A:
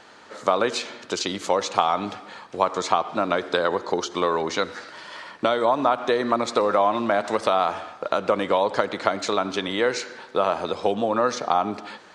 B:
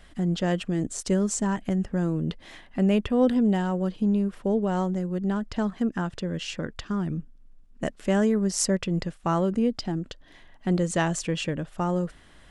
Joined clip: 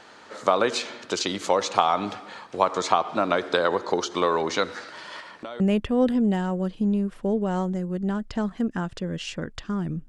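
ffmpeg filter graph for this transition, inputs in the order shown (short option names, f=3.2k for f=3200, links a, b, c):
-filter_complex "[0:a]asettb=1/sr,asplit=3[a][b][c];[a]atrim=end=5.204[d];[b]atrim=start=5.2:end=5.6,asetpts=PTS-STARTPTS,afade=t=in:d=0.004:c=qsin,afade=t=out:st=0.396:d=0.004:c=qsin,acompressor=threshold=-40dB:ratio=2.5:attack=3.2:release=140:knee=1:detection=peak[e];[c]atrim=start=5.596[f];[d][e]acrossfade=d=0.004:c1=hsin:c2=qsin[g];[g][f]acrossfade=d=0.004:c1=qsin:c2=hsin,apad=whole_dur=10.08,atrim=end=10.08,atrim=end=5.602[h];[1:a]atrim=start=2.808:end=7.29[i];[h][i]acrossfade=d=0.004:c1=hsin:c2=hsin"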